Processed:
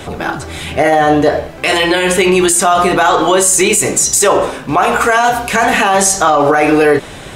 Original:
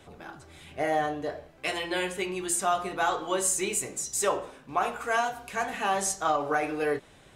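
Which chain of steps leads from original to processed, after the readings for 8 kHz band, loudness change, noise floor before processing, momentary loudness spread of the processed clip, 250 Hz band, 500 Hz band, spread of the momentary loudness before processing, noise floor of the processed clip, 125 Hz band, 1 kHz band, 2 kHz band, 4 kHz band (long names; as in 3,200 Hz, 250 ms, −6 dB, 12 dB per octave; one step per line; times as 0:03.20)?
+17.5 dB, +17.5 dB, −55 dBFS, 6 LU, +21.0 dB, +18.5 dB, 8 LU, −30 dBFS, +21.5 dB, +16.5 dB, +18.0 dB, +18.5 dB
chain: boost into a limiter +26 dB
level −1 dB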